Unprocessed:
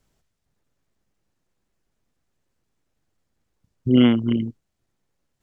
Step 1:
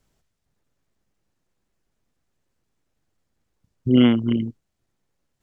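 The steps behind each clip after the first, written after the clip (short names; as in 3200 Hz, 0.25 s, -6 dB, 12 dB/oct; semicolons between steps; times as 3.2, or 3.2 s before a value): nothing audible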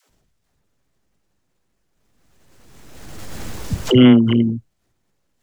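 dispersion lows, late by 96 ms, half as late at 390 Hz; backwards sustainer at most 28 dB/s; gain +5 dB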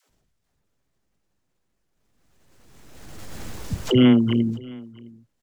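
echo 0.662 s -23 dB; gain -5 dB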